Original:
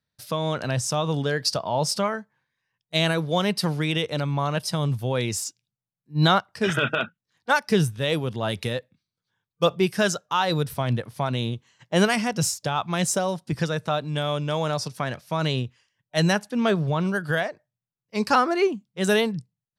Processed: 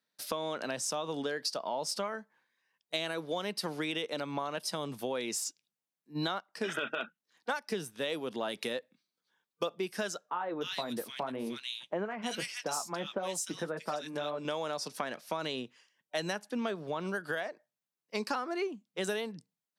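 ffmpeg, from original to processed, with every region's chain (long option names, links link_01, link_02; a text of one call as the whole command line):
ffmpeg -i in.wav -filter_complex "[0:a]asettb=1/sr,asplit=3[link_01][link_02][link_03];[link_01]atrim=end=10.304[link_04];[link_02]atrim=start=10.3:end=14.45,asetpts=PTS-STARTPTS,afade=type=in:duration=0.004:curve=qsin,afade=type=out:start_time=4.146:duration=0.004:curve=qsin,flanger=delay=4:depth=6.1:regen=-47:speed=1.7:shape=triangular,acrossover=split=2000[link_05][link_06];[link_06]adelay=300[link_07];[link_05][link_07]amix=inputs=2:normalize=0,atrim=end_sample=183015[link_08];[link_03]atrim=start=14.446[link_09];[link_04][link_08]acrossfade=duration=0.004:curve1=hsin:curve2=qsin[link_10];[link_10][link_09]acrossfade=duration=0.004:curve1=qsin:curve2=hsin,highpass=frequency=230:width=0.5412,highpass=frequency=230:width=1.3066,acompressor=threshold=-33dB:ratio=6,volume=1dB" out.wav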